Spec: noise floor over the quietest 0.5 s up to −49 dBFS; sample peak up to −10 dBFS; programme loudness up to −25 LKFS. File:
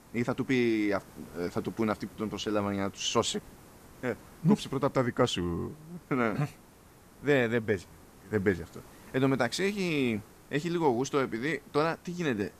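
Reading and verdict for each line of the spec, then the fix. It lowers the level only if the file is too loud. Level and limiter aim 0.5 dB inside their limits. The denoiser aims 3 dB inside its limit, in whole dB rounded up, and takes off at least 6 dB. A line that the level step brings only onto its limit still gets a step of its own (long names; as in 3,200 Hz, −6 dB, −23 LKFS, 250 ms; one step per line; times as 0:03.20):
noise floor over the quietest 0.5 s −56 dBFS: in spec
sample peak −12.0 dBFS: in spec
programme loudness −30.5 LKFS: in spec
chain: no processing needed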